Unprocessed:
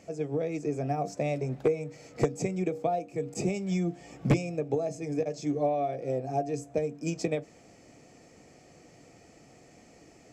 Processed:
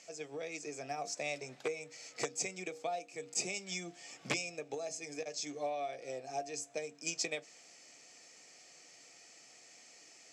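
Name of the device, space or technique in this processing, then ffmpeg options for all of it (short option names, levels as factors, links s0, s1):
piezo pickup straight into a mixer: -af "lowpass=5800,aderivative,volume=3.76"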